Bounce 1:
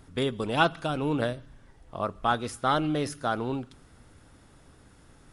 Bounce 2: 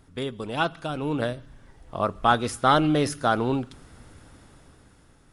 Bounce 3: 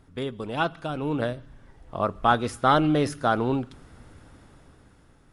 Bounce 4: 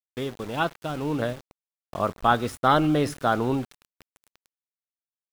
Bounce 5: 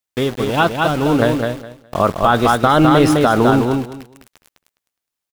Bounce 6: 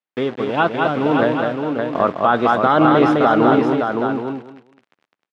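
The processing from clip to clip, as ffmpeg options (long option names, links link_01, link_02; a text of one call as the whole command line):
ffmpeg -i in.wav -af "dynaudnorm=framelen=340:gausssize=7:maxgain=11.5dB,volume=-3dB" out.wav
ffmpeg -i in.wav -af "highshelf=frequency=3700:gain=-6.5" out.wav
ffmpeg -i in.wav -af "areverse,acompressor=mode=upward:threshold=-42dB:ratio=2.5,areverse,aeval=exprs='val(0)*gte(abs(val(0)),0.0133)':channel_layout=same" out.wav
ffmpeg -i in.wav -filter_complex "[0:a]asplit=2[link_01][link_02];[link_02]aecho=0:1:207|414|621:0.562|0.107|0.0203[link_03];[link_01][link_03]amix=inputs=2:normalize=0,alimiter=level_in=13dB:limit=-1dB:release=50:level=0:latency=1,volume=-1dB" out.wav
ffmpeg -i in.wav -filter_complex "[0:a]highpass=190,lowpass=2600,asplit=2[link_01][link_02];[link_02]aecho=0:1:567:0.562[link_03];[link_01][link_03]amix=inputs=2:normalize=0,volume=-1.5dB" out.wav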